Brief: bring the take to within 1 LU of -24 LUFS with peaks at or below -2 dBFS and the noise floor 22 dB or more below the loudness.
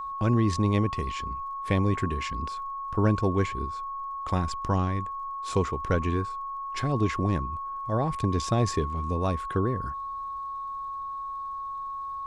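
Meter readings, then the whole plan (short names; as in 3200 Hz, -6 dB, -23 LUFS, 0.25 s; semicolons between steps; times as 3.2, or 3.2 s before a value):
ticks 35/s; steady tone 1100 Hz; tone level -32 dBFS; loudness -29.0 LUFS; peak -11.5 dBFS; loudness target -24.0 LUFS
-> de-click; notch 1100 Hz, Q 30; gain +5 dB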